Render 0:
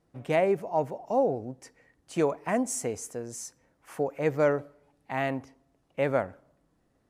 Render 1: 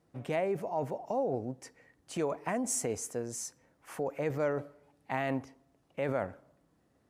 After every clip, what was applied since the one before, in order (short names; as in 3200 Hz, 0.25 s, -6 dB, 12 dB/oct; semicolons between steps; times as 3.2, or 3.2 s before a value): HPF 59 Hz; in parallel at -1 dB: negative-ratio compressor -31 dBFS, ratio -0.5; on the sum: gain -8 dB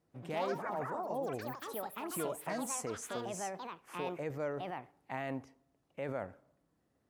echoes that change speed 0.117 s, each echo +5 st, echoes 3; gain -6.5 dB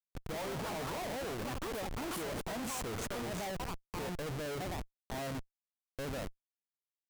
outdoor echo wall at 180 m, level -29 dB; Schmitt trigger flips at -42.5 dBFS; gain +2.5 dB